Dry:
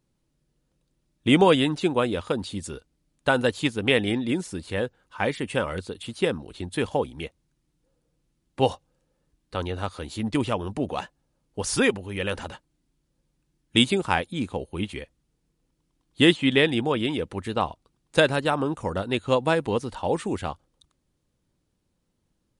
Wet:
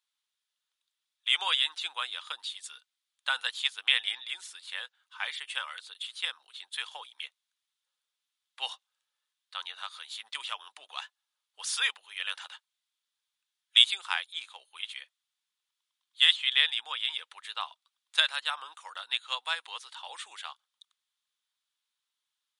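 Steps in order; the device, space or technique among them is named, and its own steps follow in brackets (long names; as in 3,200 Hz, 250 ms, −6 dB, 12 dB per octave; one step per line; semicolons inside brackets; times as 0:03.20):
headphones lying on a table (high-pass filter 1,100 Hz 24 dB per octave; parametric band 3,500 Hz +10 dB 0.48 octaves)
level −5 dB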